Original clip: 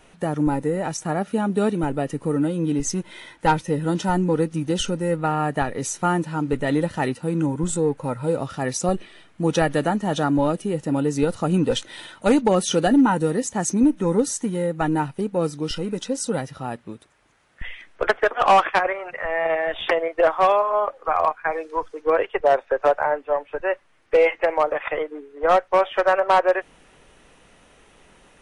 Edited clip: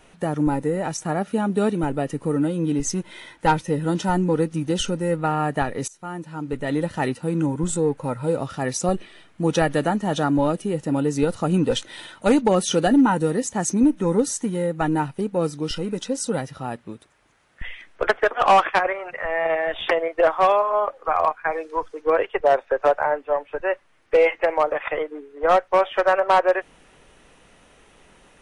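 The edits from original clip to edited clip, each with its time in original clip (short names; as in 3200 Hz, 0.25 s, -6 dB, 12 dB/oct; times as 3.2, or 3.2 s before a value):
5.88–7.06 fade in, from -21.5 dB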